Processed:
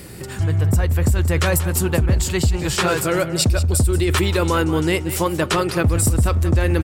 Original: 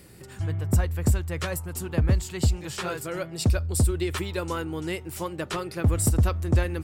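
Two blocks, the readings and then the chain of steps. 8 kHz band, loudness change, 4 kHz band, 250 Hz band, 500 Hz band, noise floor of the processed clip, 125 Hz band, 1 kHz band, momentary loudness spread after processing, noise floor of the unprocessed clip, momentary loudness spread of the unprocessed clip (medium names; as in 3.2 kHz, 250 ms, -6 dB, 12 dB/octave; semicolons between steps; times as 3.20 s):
+9.0 dB, +8.0 dB, +11.0 dB, +8.5 dB, +10.0 dB, -31 dBFS, +7.0 dB, +10.5 dB, 3 LU, -44 dBFS, 9 LU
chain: in parallel at +3 dB: compressor with a negative ratio -30 dBFS, ratio -1; on the sum: delay 183 ms -13.5 dB; trim +2.5 dB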